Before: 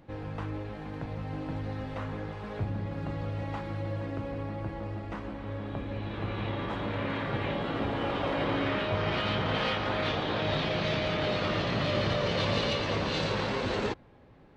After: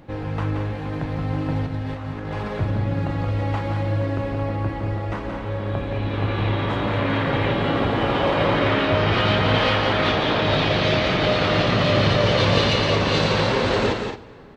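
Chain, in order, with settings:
0:01.66–0:02.48: compressor whose output falls as the input rises −39 dBFS, ratio −0.5
loudspeakers that aren't time-aligned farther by 60 metres −7 dB, 76 metres −10 dB
dense smooth reverb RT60 2.4 s, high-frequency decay 0.75×, DRR 17.5 dB
level +9 dB

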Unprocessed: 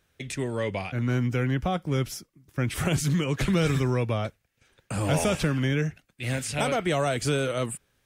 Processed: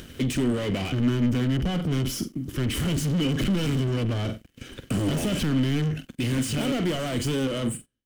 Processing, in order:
fade-out on the ending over 1.14 s
in parallel at −1.5 dB: downward compressor, threshold −37 dBFS, peak gain reduction 16.5 dB
on the sum: soft clipping −26 dBFS, distortion −9 dB
on a send: flutter between parallel walls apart 7.8 metres, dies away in 0.22 s
on the sum: brickwall limiter −28.5 dBFS, peak gain reduction 5 dB
leveller curve on the samples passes 3
parametric band 850 Hz −5.5 dB 0.48 octaves
hollow resonant body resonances 260/3,000 Hz, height 14 dB, ringing for 25 ms
upward compression, threshold −36 dBFS
low-shelf EQ 100 Hz +8.5 dB
level −1 dB

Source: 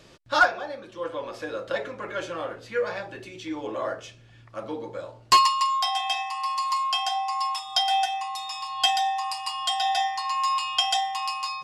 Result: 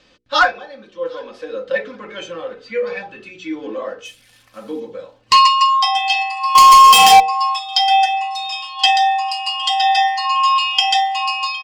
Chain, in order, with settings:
0:04.05–0:04.80: spike at every zero crossing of −36.5 dBFS
low-pass filter 4,200 Hz 12 dB per octave
high-shelf EQ 2,100 Hz +8.5 dB
delay with a high-pass on its return 760 ms, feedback 40%, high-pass 1,500 Hz, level −17.5 dB
0:06.55–0:07.20: leveller curve on the samples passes 5
noise reduction from a noise print of the clip's start 10 dB
mains-hum notches 60/120/180/240/300/360/420/480 Hz
comb filter 3.9 ms, depth 55%
in parallel at −8 dB: asymmetric clip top −11 dBFS
on the sum: boost into a limiter +4 dB
level −1 dB

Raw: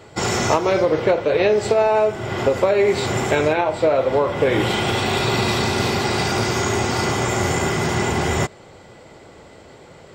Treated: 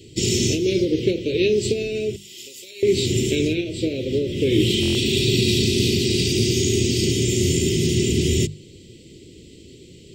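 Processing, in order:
elliptic band-stop filter 370–2,800 Hz, stop band 70 dB
0:02.16–0:02.83: first difference
mains-hum notches 50/100/150/200 Hz
buffer that repeats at 0:04.81, samples 1,024, times 5
level +4 dB

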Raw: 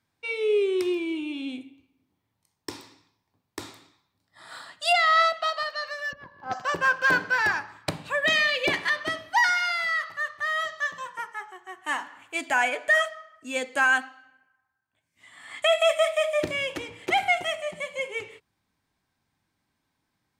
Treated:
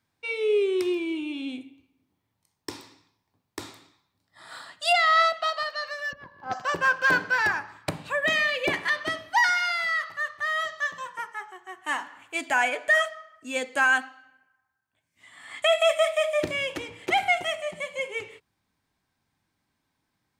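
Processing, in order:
0:07.47–0:08.89: dynamic equaliser 4,300 Hz, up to −6 dB, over −40 dBFS, Q 1.1

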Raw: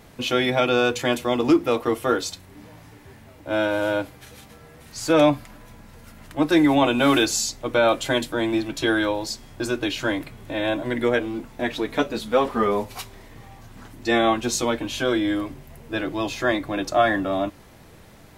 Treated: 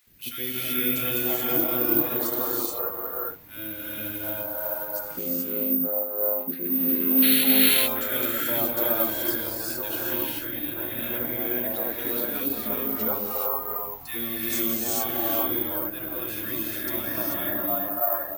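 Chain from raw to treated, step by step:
0:04.99–0:07.65: channel vocoder with a chord as carrier minor triad, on F3
0:07.22–0:07.44: sound drawn into the spectrogram noise 1,300–4,500 Hz −15 dBFS
three-band delay without the direct sound highs, lows, mids 70/730 ms, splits 430/1,500 Hz
reverb whose tail is shaped and stops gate 460 ms rising, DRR −5 dB
bad sample-rate conversion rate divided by 3×, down none, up zero stuff
level −12 dB

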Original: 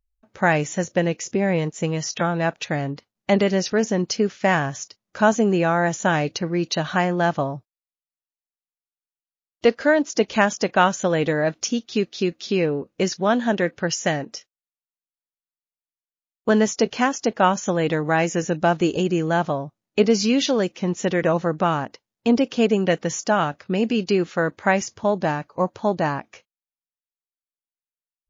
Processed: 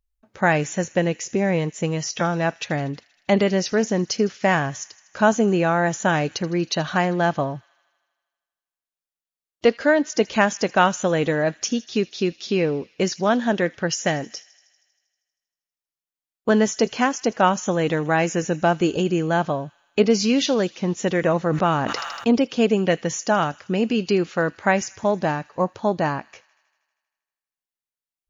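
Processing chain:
delay with a high-pass on its return 79 ms, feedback 71%, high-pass 2,300 Hz, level −19 dB
0:21.41–0:22.28: level that may fall only so fast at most 33 dB per second

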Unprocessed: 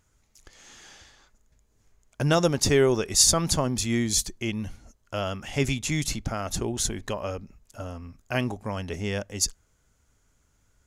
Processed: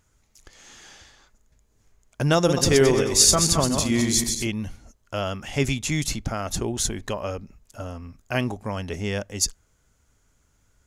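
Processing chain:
0:02.37–0:04.47: feedback delay that plays each chunk backwards 110 ms, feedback 50%, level −5 dB
level +2 dB

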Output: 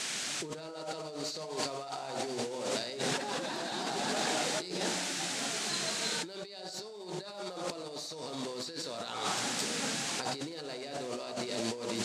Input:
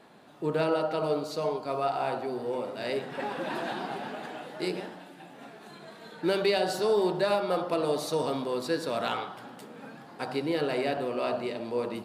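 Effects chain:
flat-topped bell 5,500 Hz +12.5 dB 1.3 octaves
noise in a band 1,300–8,300 Hz −44 dBFS
compressor whose output falls as the input rises −38 dBFS, ratio −1

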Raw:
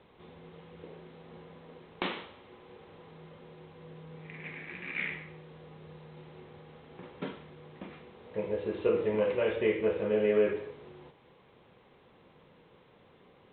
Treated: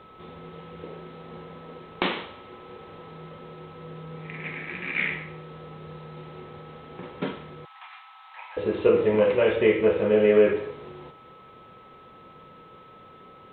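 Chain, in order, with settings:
0:07.65–0:08.57: Chebyshev high-pass filter 780 Hz, order 6
steady tone 1,300 Hz −57 dBFS
level +8 dB

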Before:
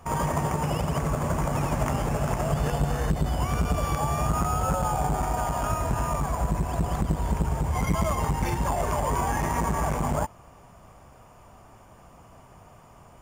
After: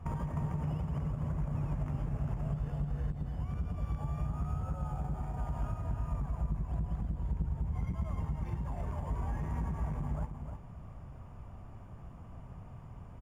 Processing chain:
bass and treble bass +14 dB, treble −11 dB
downward compressor, threshold −26 dBFS, peak gain reduction 18 dB
single-tap delay 307 ms −7.5 dB
level −7.5 dB

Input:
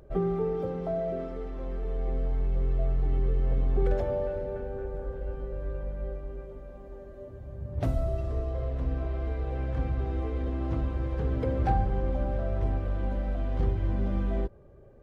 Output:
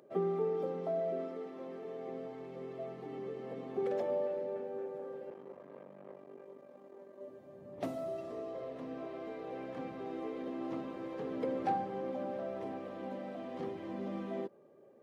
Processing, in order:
0:05.30–0:07.21: tube saturation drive 36 dB, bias 0.65
high-pass filter 210 Hz 24 dB per octave
notch filter 1,500 Hz, Q 8.8
level −3.5 dB

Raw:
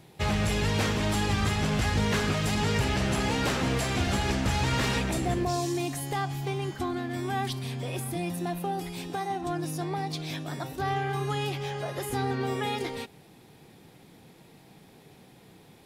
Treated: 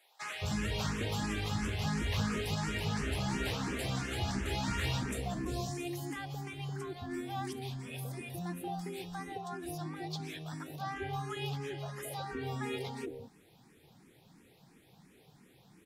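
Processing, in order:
multiband delay without the direct sound highs, lows 220 ms, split 640 Hz
frequency shifter mixed with the dry sound +2.9 Hz
level −4.5 dB

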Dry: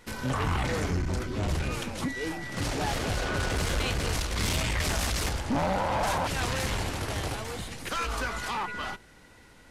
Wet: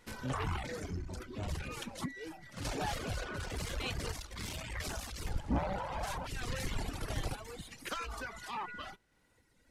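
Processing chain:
0:05.17–0:07.62: sub-octave generator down 2 octaves, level +4 dB
reverb reduction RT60 1.9 s
sample-and-hold tremolo 3.4 Hz
level −4.5 dB

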